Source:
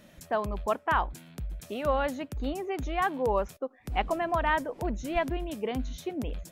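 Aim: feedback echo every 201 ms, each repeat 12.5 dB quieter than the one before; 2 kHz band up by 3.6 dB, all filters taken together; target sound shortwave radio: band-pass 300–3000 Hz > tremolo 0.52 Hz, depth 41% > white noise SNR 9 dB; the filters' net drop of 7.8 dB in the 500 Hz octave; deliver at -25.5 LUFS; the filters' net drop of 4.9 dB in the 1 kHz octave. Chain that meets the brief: band-pass 300–3000 Hz; peaking EQ 500 Hz -8.5 dB; peaking EQ 1 kHz -5 dB; peaking EQ 2 kHz +7.5 dB; feedback delay 201 ms, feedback 24%, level -12.5 dB; tremolo 0.52 Hz, depth 41%; white noise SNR 9 dB; trim +10.5 dB

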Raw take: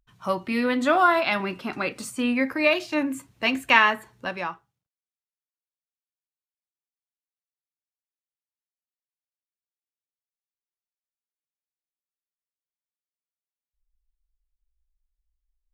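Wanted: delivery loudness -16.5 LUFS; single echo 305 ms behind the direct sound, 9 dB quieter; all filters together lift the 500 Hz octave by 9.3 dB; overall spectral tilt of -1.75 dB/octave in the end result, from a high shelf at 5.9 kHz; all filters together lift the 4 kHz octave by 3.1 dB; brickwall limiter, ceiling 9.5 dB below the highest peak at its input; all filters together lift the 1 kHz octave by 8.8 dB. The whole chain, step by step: peaking EQ 500 Hz +9 dB; peaking EQ 1 kHz +8 dB; peaking EQ 4 kHz +5 dB; treble shelf 5.9 kHz -4 dB; peak limiter -9 dBFS; delay 305 ms -9 dB; trim +4 dB

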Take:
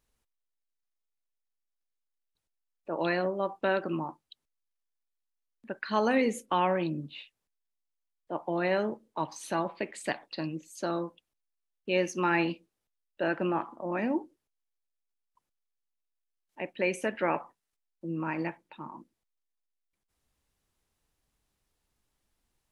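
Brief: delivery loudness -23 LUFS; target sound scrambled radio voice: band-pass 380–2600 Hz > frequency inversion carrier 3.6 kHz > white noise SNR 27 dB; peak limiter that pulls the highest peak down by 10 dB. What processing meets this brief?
peak limiter -23.5 dBFS; band-pass 380–2600 Hz; frequency inversion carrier 3.6 kHz; white noise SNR 27 dB; trim +12 dB

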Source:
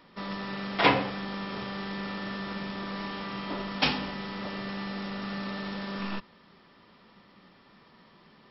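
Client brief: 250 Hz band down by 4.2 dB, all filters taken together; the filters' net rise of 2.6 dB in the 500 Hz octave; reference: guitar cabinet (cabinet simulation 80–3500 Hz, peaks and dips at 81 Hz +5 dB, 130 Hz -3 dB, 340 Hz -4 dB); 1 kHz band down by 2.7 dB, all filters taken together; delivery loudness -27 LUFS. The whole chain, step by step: cabinet simulation 80–3500 Hz, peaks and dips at 81 Hz +5 dB, 130 Hz -3 dB, 340 Hz -4 dB; peaking EQ 250 Hz -6 dB; peaking EQ 500 Hz +6.5 dB; peaking EQ 1 kHz -5 dB; trim +6.5 dB

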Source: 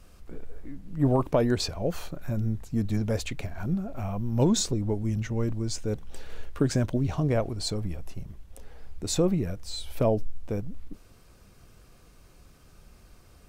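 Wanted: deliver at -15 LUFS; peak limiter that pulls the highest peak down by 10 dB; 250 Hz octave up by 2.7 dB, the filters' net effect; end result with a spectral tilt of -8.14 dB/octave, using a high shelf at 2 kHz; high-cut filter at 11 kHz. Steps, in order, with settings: low-pass 11 kHz; peaking EQ 250 Hz +3.5 dB; treble shelf 2 kHz -8.5 dB; trim +16 dB; peak limiter -4 dBFS

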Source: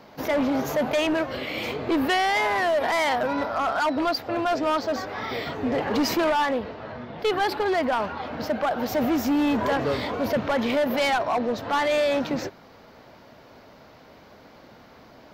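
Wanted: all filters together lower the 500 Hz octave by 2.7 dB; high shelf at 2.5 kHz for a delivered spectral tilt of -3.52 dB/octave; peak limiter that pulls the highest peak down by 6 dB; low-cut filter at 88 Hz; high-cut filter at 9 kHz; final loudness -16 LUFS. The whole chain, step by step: high-pass 88 Hz; low-pass 9 kHz; peaking EQ 500 Hz -4 dB; treble shelf 2.5 kHz +7.5 dB; trim +10.5 dB; peak limiter -7 dBFS

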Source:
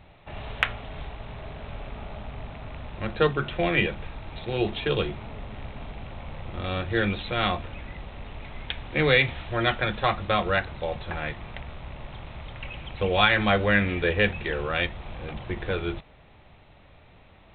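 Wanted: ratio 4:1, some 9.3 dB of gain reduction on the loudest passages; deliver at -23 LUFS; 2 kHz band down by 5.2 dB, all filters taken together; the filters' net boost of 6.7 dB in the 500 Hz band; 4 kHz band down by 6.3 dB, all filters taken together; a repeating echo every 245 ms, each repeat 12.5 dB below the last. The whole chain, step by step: peaking EQ 500 Hz +8 dB; peaking EQ 2 kHz -5.5 dB; peaking EQ 4 kHz -6 dB; compression 4:1, threshold -22 dBFS; feedback delay 245 ms, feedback 24%, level -12.5 dB; trim +6.5 dB

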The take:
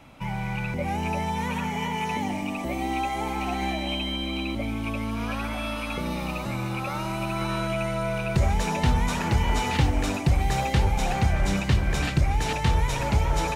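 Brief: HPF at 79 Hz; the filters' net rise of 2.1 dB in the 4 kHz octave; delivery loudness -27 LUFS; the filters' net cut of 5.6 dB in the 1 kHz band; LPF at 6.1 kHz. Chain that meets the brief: high-pass 79 Hz; low-pass 6.1 kHz; peaking EQ 1 kHz -7.5 dB; peaking EQ 4 kHz +4 dB; trim +1.5 dB

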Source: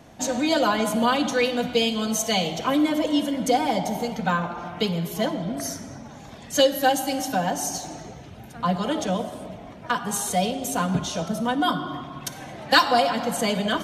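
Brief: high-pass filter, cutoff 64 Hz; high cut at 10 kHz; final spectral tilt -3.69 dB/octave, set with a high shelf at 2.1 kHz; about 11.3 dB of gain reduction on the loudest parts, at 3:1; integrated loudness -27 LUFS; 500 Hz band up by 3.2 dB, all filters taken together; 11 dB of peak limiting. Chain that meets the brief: high-pass 64 Hz; low-pass 10 kHz; peaking EQ 500 Hz +3.5 dB; treble shelf 2.1 kHz +3.5 dB; compression 3:1, threshold -26 dBFS; trim +4.5 dB; peak limiter -17.5 dBFS

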